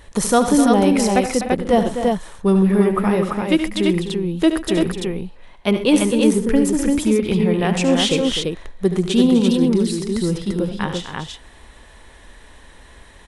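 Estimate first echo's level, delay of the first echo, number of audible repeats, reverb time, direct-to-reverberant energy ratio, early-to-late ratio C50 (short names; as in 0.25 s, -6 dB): -11.0 dB, 73 ms, 5, none, none, none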